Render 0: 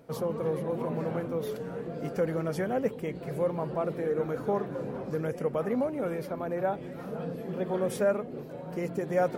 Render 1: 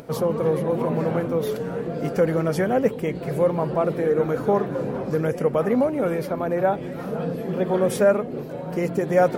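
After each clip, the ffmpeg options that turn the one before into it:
-af "acompressor=mode=upward:threshold=-46dB:ratio=2.5,volume=8.5dB"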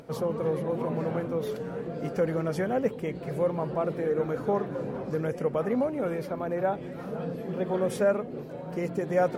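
-af "highshelf=f=12k:g=-8.5,volume=-6.5dB"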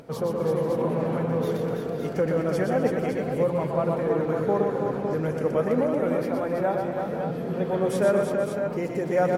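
-af "aecho=1:1:121|218|255|329|486|560:0.562|0.106|0.2|0.531|0.2|0.447,volume=1.5dB"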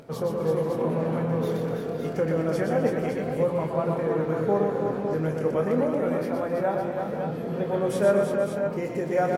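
-filter_complex "[0:a]asplit=2[a][b];[b]adelay=25,volume=-7.5dB[c];[a][c]amix=inputs=2:normalize=0,volume=-1.5dB"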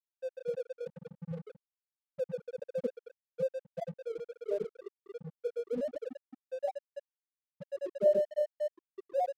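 -af "afftfilt=real='re*gte(hypot(re,im),0.501)':imag='im*gte(hypot(re,im),0.501)':win_size=1024:overlap=0.75,equalizer=f=670:t=o:w=0.24:g=13,aeval=exprs='sgn(val(0))*max(abs(val(0))-0.00668,0)':c=same,volume=-8dB"

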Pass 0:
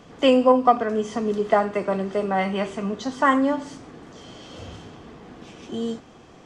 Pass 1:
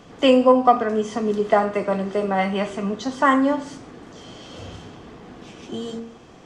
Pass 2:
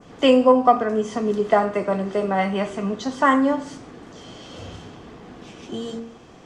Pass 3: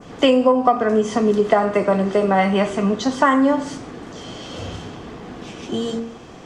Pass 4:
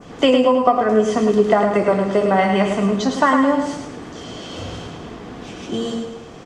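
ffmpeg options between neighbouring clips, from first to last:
-af "bandreject=f=76.56:t=h:w=4,bandreject=f=153.12:t=h:w=4,bandreject=f=229.68:t=h:w=4,bandreject=f=306.24:t=h:w=4,bandreject=f=382.8:t=h:w=4,bandreject=f=459.36:t=h:w=4,bandreject=f=535.92:t=h:w=4,bandreject=f=612.48:t=h:w=4,bandreject=f=689.04:t=h:w=4,bandreject=f=765.6:t=h:w=4,bandreject=f=842.16:t=h:w=4,bandreject=f=918.72:t=h:w=4,bandreject=f=995.28:t=h:w=4,bandreject=f=1.07184k:t=h:w=4,bandreject=f=1.1484k:t=h:w=4,bandreject=f=1.22496k:t=h:w=4,bandreject=f=1.30152k:t=h:w=4,bandreject=f=1.37808k:t=h:w=4,bandreject=f=1.45464k:t=h:w=4,bandreject=f=1.5312k:t=h:w=4,bandreject=f=1.60776k:t=h:w=4,bandreject=f=1.68432k:t=h:w=4,bandreject=f=1.76088k:t=h:w=4,bandreject=f=1.83744k:t=h:w=4,bandreject=f=1.914k:t=h:w=4,bandreject=f=1.99056k:t=h:w=4,bandreject=f=2.06712k:t=h:w=4,bandreject=f=2.14368k:t=h:w=4,bandreject=f=2.22024k:t=h:w=4,bandreject=f=2.2968k:t=h:w=4,bandreject=f=2.37336k:t=h:w=4,bandreject=f=2.44992k:t=h:w=4,bandreject=f=2.52648k:t=h:w=4,volume=2dB"
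-af "adynamicequalizer=threshold=0.0126:dfrequency=3500:dqfactor=0.86:tfrequency=3500:tqfactor=0.86:attack=5:release=100:ratio=0.375:range=2:mode=cutabove:tftype=bell"
-af "acompressor=threshold=-18dB:ratio=5,volume=6.5dB"
-af "aecho=1:1:107|214|321|428|535:0.501|0.21|0.0884|0.0371|0.0156"

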